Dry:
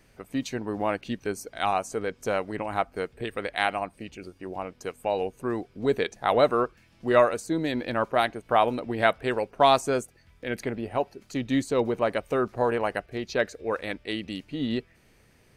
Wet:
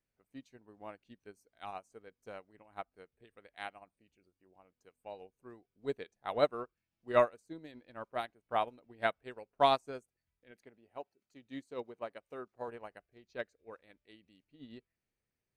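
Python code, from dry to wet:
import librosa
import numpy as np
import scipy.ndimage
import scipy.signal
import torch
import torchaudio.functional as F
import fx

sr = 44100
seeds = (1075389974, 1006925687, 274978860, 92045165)

y = fx.low_shelf(x, sr, hz=120.0, db=-11.0, at=(10.51, 12.68))
y = fx.upward_expand(y, sr, threshold_db=-32.0, expansion=2.5)
y = y * 10.0 ** (-5.5 / 20.0)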